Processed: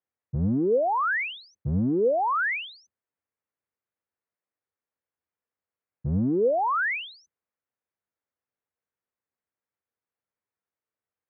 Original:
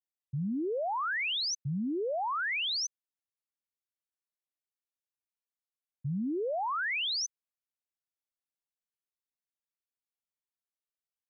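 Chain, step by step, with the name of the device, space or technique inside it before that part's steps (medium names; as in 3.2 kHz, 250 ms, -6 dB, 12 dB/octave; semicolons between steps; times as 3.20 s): sub-octave bass pedal (octave divider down 1 oct, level -4 dB; cabinet simulation 80–2100 Hz, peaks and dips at 86 Hz +5 dB, 150 Hz -4 dB, 480 Hz +5 dB); trim +7.5 dB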